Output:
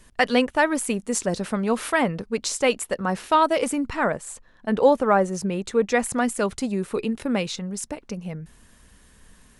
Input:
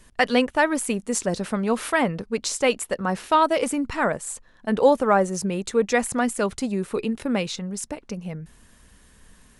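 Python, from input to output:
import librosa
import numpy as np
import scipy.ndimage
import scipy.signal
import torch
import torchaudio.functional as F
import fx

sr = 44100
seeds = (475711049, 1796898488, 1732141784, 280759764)

y = fx.high_shelf(x, sr, hz=5800.0, db=-6.5, at=(3.9, 6.04))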